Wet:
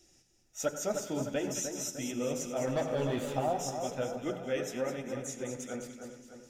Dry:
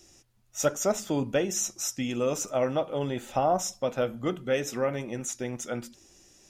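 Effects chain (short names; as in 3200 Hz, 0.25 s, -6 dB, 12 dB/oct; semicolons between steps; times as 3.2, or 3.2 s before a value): notch 1100 Hz, Q 5.4; 2.67–3.33 sample leveller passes 2; flange 1.4 Hz, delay 2.4 ms, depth 10 ms, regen -40%; split-band echo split 1900 Hz, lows 0.303 s, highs 0.208 s, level -7 dB; on a send at -11 dB: reverb RT60 0.40 s, pre-delay 84 ms; on the sum: gain -3.5 dB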